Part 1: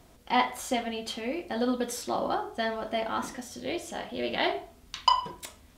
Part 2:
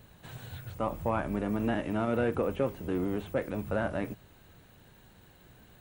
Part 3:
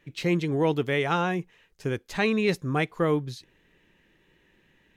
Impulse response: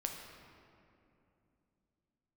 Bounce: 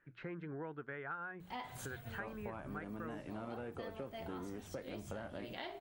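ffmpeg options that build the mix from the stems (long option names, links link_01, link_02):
-filter_complex "[0:a]adelay=1200,volume=-9dB[link_01];[1:a]adelay=1400,volume=-4dB[link_02];[2:a]lowpass=frequency=1500:width_type=q:width=6.9,bandreject=frequency=60:width_type=h:width=6,bandreject=frequency=120:width_type=h:width=6,bandreject=frequency=180:width_type=h:width=6,volume=-14dB,asplit=2[link_03][link_04];[link_04]apad=whole_len=307476[link_05];[link_01][link_05]sidechaincompress=threshold=-55dB:ratio=4:attack=16:release=206[link_06];[link_06][link_02][link_03]amix=inputs=3:normalize=0,acompressor=threshold=-42dB:ratio=6"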